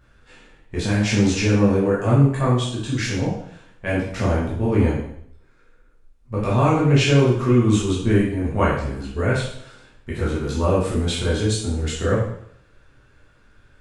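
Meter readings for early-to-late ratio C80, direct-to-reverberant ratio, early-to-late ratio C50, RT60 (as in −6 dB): 6.0 dB, −7.5 dB, 2.5 dB, 0.65 s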